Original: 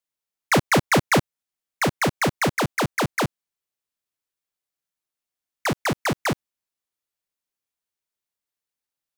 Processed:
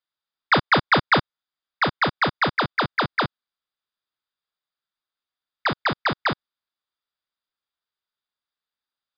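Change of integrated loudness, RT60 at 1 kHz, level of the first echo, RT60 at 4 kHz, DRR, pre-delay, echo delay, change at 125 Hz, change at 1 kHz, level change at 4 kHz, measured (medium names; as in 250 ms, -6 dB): +1.0 dB, no reverb, no echo, no reverb, no reverb, no reverb, no echo, -4.0 dB, +3.0 dB, +3.0 dB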